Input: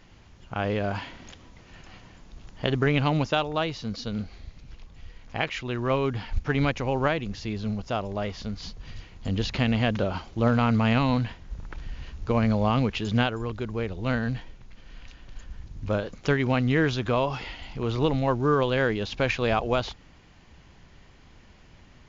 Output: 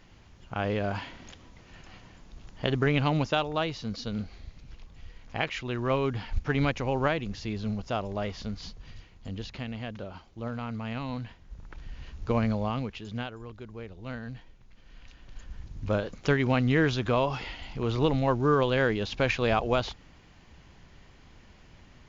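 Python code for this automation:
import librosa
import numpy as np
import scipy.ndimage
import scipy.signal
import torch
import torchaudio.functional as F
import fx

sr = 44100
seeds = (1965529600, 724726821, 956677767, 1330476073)

y = fx.gain(x, sr, db=fx.line((8.51, -2.0), (9.7, -13.0), (10.85, -13.0), (12.32, -2.0), (13.02, -11.5), (14.24, -11.5), (15.61, -1.0)))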